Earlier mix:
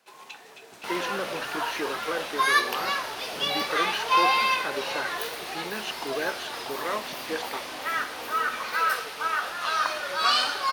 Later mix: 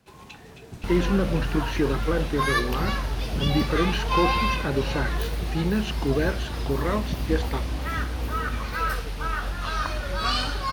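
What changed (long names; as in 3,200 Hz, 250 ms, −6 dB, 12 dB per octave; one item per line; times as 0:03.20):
first sound: send −9.0 dB
second sound: send off
master: remove high-pass filter 580 Hz 12 dB per octave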